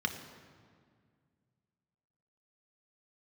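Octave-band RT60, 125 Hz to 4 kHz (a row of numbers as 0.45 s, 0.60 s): 3.0 s, 2.6 s, 2.1 s, 1.9 s, 1.7 s, 1.3 s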